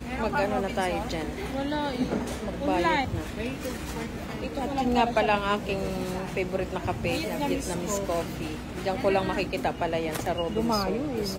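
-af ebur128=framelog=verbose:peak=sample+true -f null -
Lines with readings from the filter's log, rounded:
Integrated loudness:
  I:         -28.4 LUFS
  Threshold: -38.4 LUFS
Loudness range:
  LRA:         2.1 LU
  Threshold: -48.5 LUFS
  LRA low:   -29.5 LUFS
  LRA high:  -27.4 LUFS
Sample peak:
  Peak:      -10.3 dBFS
True peak:
  Peak:      -10.3 dBFS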